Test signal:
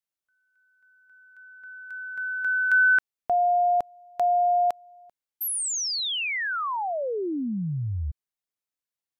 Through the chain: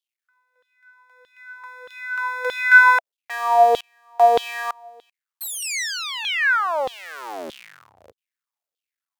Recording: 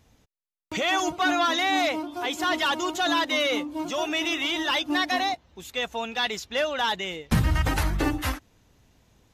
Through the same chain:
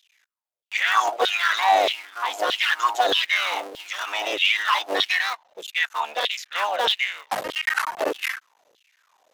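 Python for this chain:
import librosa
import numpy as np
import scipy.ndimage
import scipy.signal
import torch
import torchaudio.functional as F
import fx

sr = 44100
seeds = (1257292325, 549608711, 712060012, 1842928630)

y = fx.cycle_switch(x, sr, every=3, mode='muted')
y = fx.filter_lfo_highpass(y, sr, shape='saw_down', hz=1.6, low_hz=450.0, high_hz=3500.0, q=5.7)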